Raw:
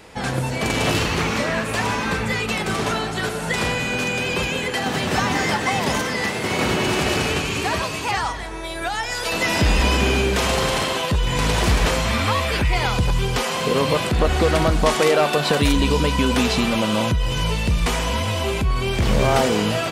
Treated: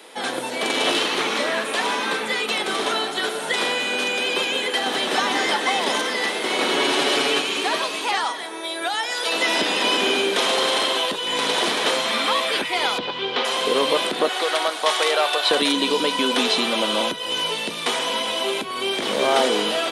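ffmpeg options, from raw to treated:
-filter_complex "[0:a]asettb=1/sr,asplit=3[s0][s1][s2];[s0]atrim=end=6.734[s3];[s1]atrim=start=6.73:end=7.41,asetpts=PTS-STARTPTS,afade=t=in:d=0.004:c=qsin,afade=t=out:st=0.676:d=0.004:c=qsin,aecho=1:1:7.2:0.65,atrim=end_sample=29988[s4];[s2]atrim=start=7.406[s5];[s3][s4]acrossfade=d=0.004:c1=hsin:c2=qsin[s6];[s6][s5]acrossfade=d=0.004:c1=qsin:c2=hsin,asettb=1/sr,asplit=3[s7][s8][s9];[s7]atrim=end=12.984[s10];[s8]atrim=start=12.98:end=13.45,asetpts=PTS-STARTPTS,afade=t=in:d=0.004:c=qsin,afade=t=out:st=0.466:d=0.004:c=qsin,lowpass=f=4100:w=0.5412,lowpass=f=4100:w=1.3066[s11];[s9]atrim=start=13.446[s12];[s10][s11]acrossfade=d=0.004:c1=hsin:c2=qsin[s13];[s13][s12]acrossfade=d=0.004:c1=qsin:c2=hsin,asettb=1/sr,asplit=3[s14][s15][s16];[s14]atrim=end=14.294[s17];[s15]atrim=start=14.29:end=15.51,asetpts=PTS-STARTPTS,afade=t=in:d=0.004:c=qsin,afade=t=out:st=1.216:d=0.004:c=qsin,highpass=630[s18];[s16]atrim=start=15.506[s19];[s17][s18]acrossfade=d=0.004:c1=hsin:c2=qsin[s20];[s20][s19]acrossfade=d=0.004:c1=qsin:c2=hsin,highpass=f=280:w=0.5412,highpass=f=280:w=1.3066,acrossover=split=7900[s21][s22];[s22]acompressor=threshold=0.00316:ratio=4:attack=1:release=60[s23];[s21][s23]amix=inputs=2:normalize=0,superequalizer=13b=2:16b=2.51"

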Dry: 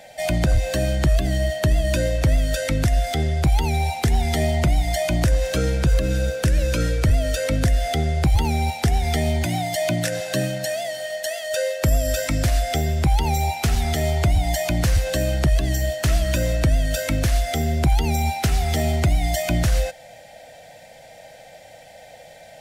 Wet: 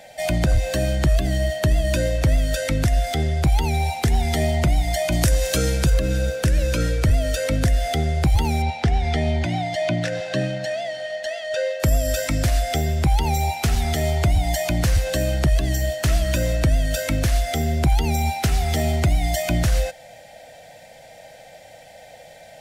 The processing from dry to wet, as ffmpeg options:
-filter_complex "[0:a]asettb=1/sr,asplit=3[s0][s1][s2];[s0]atrim=end=5.124[s3];[s1]atrim=start=5.12:end=5.9,asetpts=PTS-STARTPTS,afade=t=in:d=0.004:c=qsin,afade=t=out:st=0.776:d=0.004:c=qsin,highshelf=f=4300:g=10.5[s4];[s2]atrim=start=5.896[s5];[s3][s4]acrossfade=d=0.004:c1=hsin:c2=qsin[s6];[s6][s5]acrossfade=d=0.004:c1=qsin:c2=hsin,asettb=1/sr,asplit=3[s7][s8][s9];[s7]atrim=end=8.624[s10];[s8]atrim=start=8.62:end=11.8,asetpts=PTS-STARTPTS,afade=t=in:d=0.004:c=qsin,afade=t=out:st=3.176:d=0.004:c=qsin,lowpass=4200[s11];[s9]atrim=start=11.796[s12];[s10][s11]acrossfade=d=0.004:c1=hsin:c2=qsin[s13];[s13][s12]acrossfade=d=0.004:c1=qsin:c2=hsin"

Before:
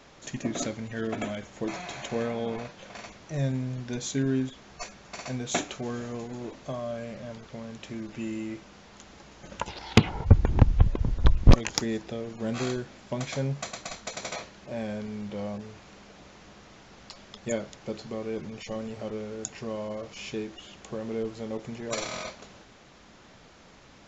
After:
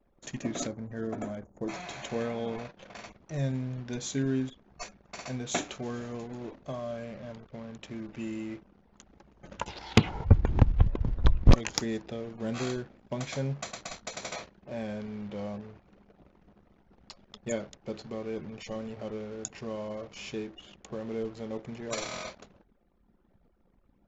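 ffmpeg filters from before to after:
-filter_complex "[0:a]asettb=1/sr,asplit=3[s0][s1][s2];[s0]atrim=end=0.674[s3];[s1]atrim=start=0.67:end=1.69,asetpts=PTS-STARTPTS,afade=t=in:d=0.004:c=qsin,afade=t=out:st=1.016:d=0.004:c=qsin,equalizer=f=2900:w=1:g=-15[s4];[s2]atrim=start=1.686[s5];[s3][s4]acrossfade=d=0.004:c1=hsin:c2=qsin[s6];[s6][s5]acrossfade=d=0.004:c1=qsin:c2=hsin,anlmdn=0.0251,volume=0.75"

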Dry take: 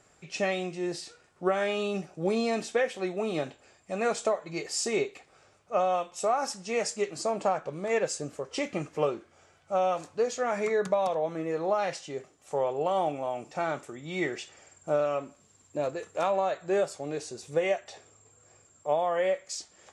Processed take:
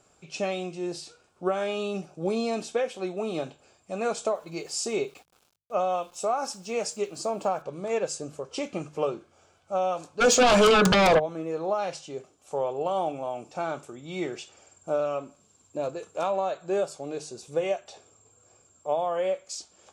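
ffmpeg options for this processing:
-filter_complex "[0:a]asettb=1/sr,asplit=3[s0][s1][s2];[s0]atrim=end=4.344[s3];[s1]atrim=start=4.34:end=7.62,asetpts=PTS-STARTPTS,afade=t=in:d=0.004:c=qsin,afade=t=out:st=3.276:d=0.004:c=qsin,aeval=exprs='val(0)*gte(abs(val(0)),0.002)':c=same[s4];[s2]atrim=start=7.616[s5];[s3][s4]acrossfade=d=0.004:c1=hsin:c2=qsin[s6];[s6][s5]acrossfade=d=0.004:c1=qsin:c2=hsin,asplit=3[s7][s8][s9];[s7]afade=t=out:st=10.2:d=0.02[s10];[s8]aeval=exprs='0.2*sin(PI/2*5.01*val(0)/0.2)':c=same,afade=t=in:st=10.2:d=0.02,afade=t=out:st=11.18:d=0.02[s11];[s9]afade=t=in:st=11.18:d=0.02[s12];[s10][s11][s12]amix=inputs=3:normalize=0,equalizer=f=1900:w=5.2:g=-13.5,bandreject=f=50:t=h:w=6,bandreject=f=100:t=h:w=6,bandreject=f=150:t=h:w=6"

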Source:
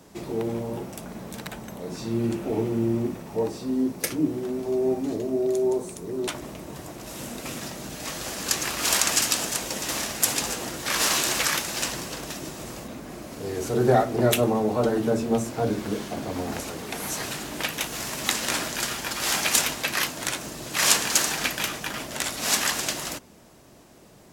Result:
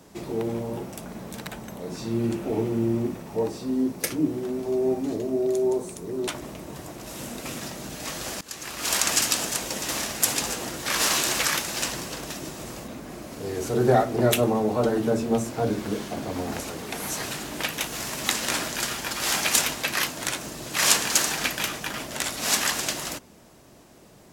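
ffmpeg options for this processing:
-filter_complex "[0:a]asplit=2[s0][s1];[s0]atrim=end=8.41,asetpts=PTS-STARTPTS,afade=t=out:st=8.406:d=0.004:c=hsin:silence=0.0944061[s2];[s1]atrim=start=8.41,asetpts=PTS-STARTPTS,afade=t=in:d=0.7:silence=0.0944061[s3];[s2][s3]concat=n=2:v=0:a=1"

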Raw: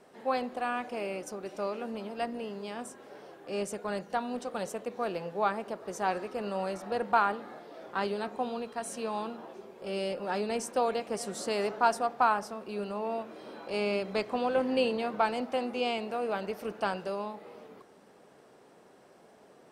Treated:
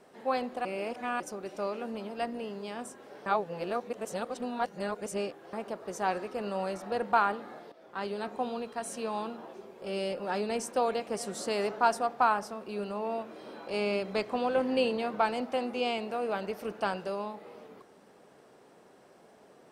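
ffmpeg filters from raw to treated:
-filter_complex "[0:a]asplit=6[s0][s1][s2][s3][s4][s5];[s0]atrim=end=0.652[s6];[s1]atrim=start=0.648:end=1.202,asetpts=PTS-STARTPTS,areverse[s7];[s2]atrim=start=1.198:end=3.262[s8];[s3]atrim=start=3.258:end=5.532,asetpts=PTS-STARTPTS,areverse[s9];[s4]atrim=start=5.528:end=7.72,asetpts=PTS-STARTPTS,afade=t=out:st=2.188:d=0.004:c=hsin:silence=0.223872[s10];[s5]atrim=start=7.72,asetpts=PTS-STARTPTS,afade=t=in:d=0.6:silence=0.223872[s11];[s6][s7]acrossfade=d=0.004:c1=hsin:c2=hsin[s12];[s12][s8]acrossfade=d=0.004:c1=hsin:c2=hsin[s13];[s13][s9]acrossfade=d=0.004:c1=hsin:c2=hsin[s14];[s10][s11]concat=n=2:v=0:a=1[s15];[s14][s15]acrossfade=d=0.004:c1=hsin:c2=hsin"

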